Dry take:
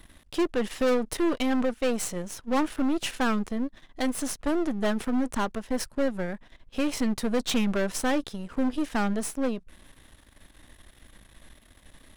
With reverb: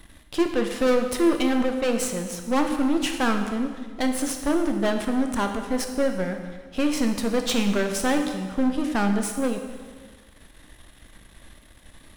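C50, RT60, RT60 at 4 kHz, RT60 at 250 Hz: 6.5 dB, 1.5 s, 1.4 s, 1.5 s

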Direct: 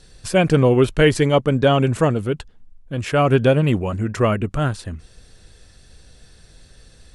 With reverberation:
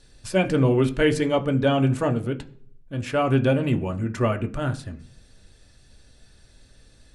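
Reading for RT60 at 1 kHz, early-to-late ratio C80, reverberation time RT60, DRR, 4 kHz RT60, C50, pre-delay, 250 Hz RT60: 0.45 s, 21.0 dB, 0.50 s, 5.0 dB, 0.50 s, 16.0 dB, 3 ms, 0.70 s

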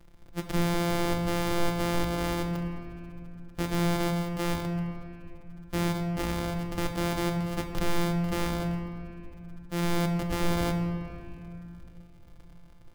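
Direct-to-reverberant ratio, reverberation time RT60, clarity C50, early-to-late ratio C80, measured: 4.0 dB, 2.7 s, 6.0 dB, 7.0 dB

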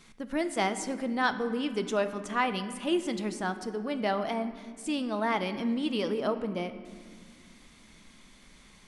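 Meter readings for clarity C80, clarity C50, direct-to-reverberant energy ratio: 12.5 dB, 11.5 dB, 9.5 dB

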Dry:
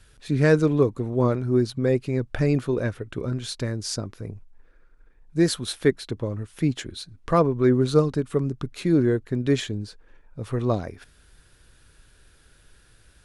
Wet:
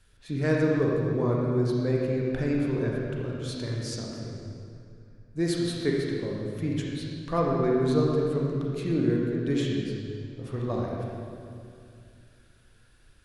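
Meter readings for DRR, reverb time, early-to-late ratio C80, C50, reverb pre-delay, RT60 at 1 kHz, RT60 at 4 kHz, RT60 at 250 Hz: -3.0 dB, 2.4 s, 0.5 dB, -1.0 dB, 31 ms, 2.2 s, 1.9 s, 3.0 s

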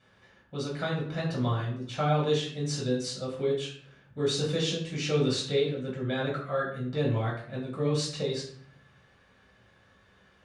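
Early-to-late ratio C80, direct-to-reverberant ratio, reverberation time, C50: 9.0 dB, -5.0 dB, 0.55 s, 5.5 dB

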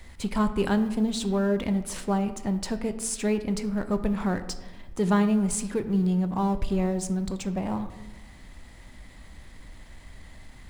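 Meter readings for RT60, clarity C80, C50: 1.2 s, 14.0 dB, 12.0 dB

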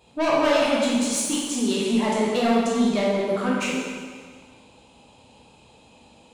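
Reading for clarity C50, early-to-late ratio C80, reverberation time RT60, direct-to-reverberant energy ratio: -1.5 dB, 1.0 dB, 1.7 s, -5.5 dB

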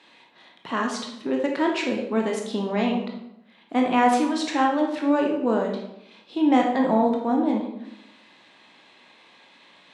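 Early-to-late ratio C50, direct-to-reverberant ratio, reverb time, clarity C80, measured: 4.0 dB, 0.5 dB, 0.80 s, 8.0 dB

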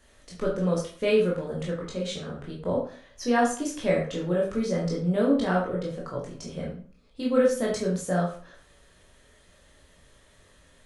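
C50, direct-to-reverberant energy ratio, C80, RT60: 5.0 dB, -4.0 dB, 9.5 dB, 0.45 s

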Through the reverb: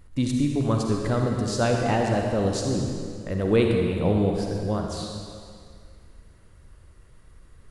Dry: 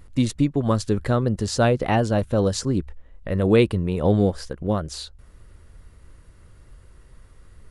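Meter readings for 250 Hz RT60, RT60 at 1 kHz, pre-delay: 2.1 s, 2.1 s, 39 ms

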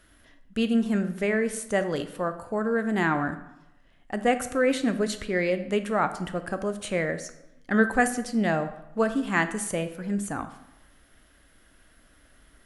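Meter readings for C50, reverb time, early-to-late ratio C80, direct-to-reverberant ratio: 12.0 dB, 0.95 s, 14.5 dB, 9.0 dB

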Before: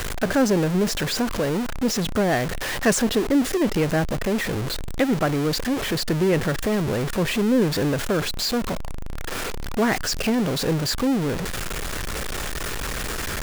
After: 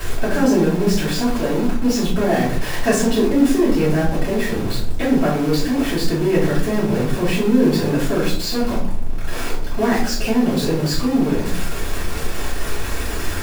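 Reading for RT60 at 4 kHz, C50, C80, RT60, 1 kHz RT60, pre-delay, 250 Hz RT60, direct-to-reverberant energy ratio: 0.35 s, 5.0 dB, 10.0 dB, 0.55 s, 0.50 s, 4 ms, 0.90 s, -9.5 dB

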